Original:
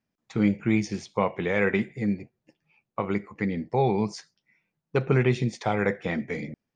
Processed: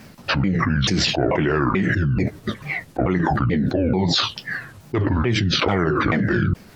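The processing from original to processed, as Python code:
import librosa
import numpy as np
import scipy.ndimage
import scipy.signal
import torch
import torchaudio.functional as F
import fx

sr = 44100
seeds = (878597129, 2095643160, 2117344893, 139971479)

y = fx.pitch_ramps(x, sr, semitones=-9.0, every_ms=437)
y = fx.env_flatten(y, sr, amount_pct=100)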